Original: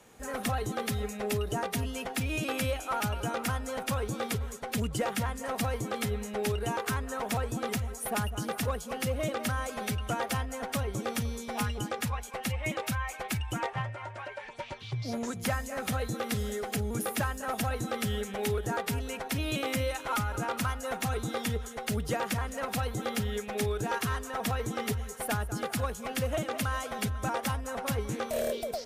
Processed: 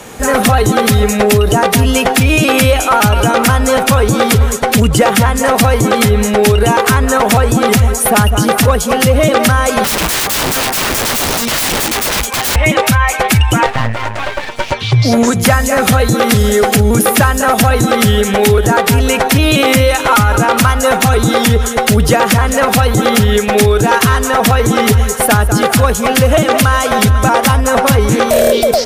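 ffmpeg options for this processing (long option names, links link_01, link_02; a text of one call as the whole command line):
ffmpeg -i in.wav -filter_complex "[0:a]asettb=1/sr,asplit=3[link_01][link_02][link_03];[link_01]atrim=end=9.844[link_04];[link_02]atrim=start=9.84:end=12.56,asetpts=PTS-STARTPTS,afade=type=in:duration=0.004:curve=qsin,afade=type=out:start_time=2.716:duration=0.004:curve=qsin,aeval=exprs='(mod(59.6*val(0)+1,2)-1)/59.6':channel_layout=same[link_05];[link_03]atrim=start=12.556[link_06];[link_04][link_05]acrossfade=duration=0.004:curve1=hsin:curve2=qsin[link_07];[link_07][link_06]acrossfade=duration=0.004:curve1=qsin:curve2=hsin,asettb=1/sr,asplit=3[link_08][link_09][link_10];[link_08]atrim=end=13.664[link_11];[link_09]atrim=start=13.66:end=14.72,asetpts=PTS-STARTPTS,afade=type=in:duration=0.004:curve=qsin,afade=type=out:start_time=1.056:duration=0.004:curve=qsin,aeval=exprs='max(val(0),0)':channel_layout=same[link_12];[link_10]atrim=start=14.716[link_13];[link_11][link_12]acrossfade=duration=0.004:curve1=hsin:curve2=qsin[link_14];[link_14][link_13]acrossfade=duration=0.004:curve1=qsin:curve2=hsin,alimiter=level_in=26.5dB:limit=-1dB:release=50:level=0:latency=1,volume=-1dB" out.wav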